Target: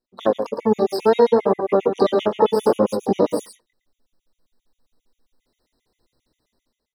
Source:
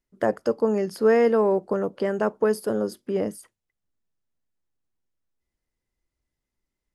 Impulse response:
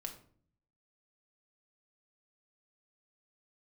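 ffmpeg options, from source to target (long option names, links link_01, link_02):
-filter_complex "[0:a]dynaudnorm=framelen=540:gausssize=3:maxgain=15.5dB,flanger=delay=16:depth=7.9:speed=0.64,lowshelf=frequency=310:gain=-4.5,asplit=2[link_01][link_02];[link_02]aecho=0:1:113:0.398[link_03];[link_01][link_03]amix=inputs=2:normalize=0,asplit=3[link_04][link_05][link_06];[link_05]asetrate=22050,aresample=44100,atempo=2,volume=-14dB[link_07];[link_06]asetrate=88200,aresample=44100,atempo=0.5,volume=-7dB[link_08];[link_04][link_07][link_08]amix=inputs=3:normalize=0,acompressor=threshold=-19dB:ratio=6,equalizer=frequency=250:width_type=o:width=1:gain=8,equalizer=frequency=500:width_type=o:width=1:gain=8,equalizer=frequency=1000:width_type=o:width=1:gain=4,equalizer=frequency=2000:width_type=o:width=1:gain=-4,equalizer=frequency=4000:width_type=o:width=1:gain=9,afftfilt=real='re*gt(sin(2*PI*7.5*pts/sr)*(1-2*mod(floor(b*sr/1024/1900),2)),0)':imag='im*gt(sin(2*PI*7.5*pts/sr)*(1-2*mod(floor(b*sr/1024/1900),2)),0)':win_size=1024:overlap=0.75"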